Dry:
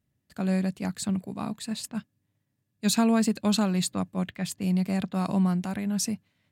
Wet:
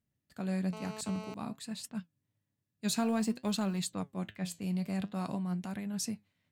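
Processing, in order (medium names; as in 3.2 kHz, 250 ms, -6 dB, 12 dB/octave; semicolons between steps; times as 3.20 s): 2.97–3.79 s: companding laws mixed up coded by A; 5.34–5.94 s: compression, threshold -25 dBFS, peak gain reduction 5.5 dB; flange 0.53 Hz, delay 4.2 ms, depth 9.2 ms, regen +73%; 0.73–1.34 s: mobile phone buzz -42 dBFS; trim -3 dB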